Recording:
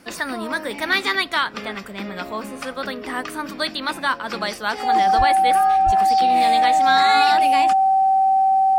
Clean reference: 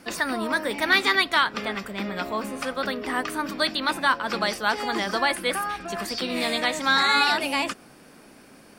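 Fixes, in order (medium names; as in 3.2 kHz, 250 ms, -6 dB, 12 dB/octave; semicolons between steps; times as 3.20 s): band-stop 770 Hz, Q 30; 5.17–5.29 s: high-pass 140 Hz 24 dB/octave; 5.85–5.97 s: high-pass 140 Hz 24 dB/octave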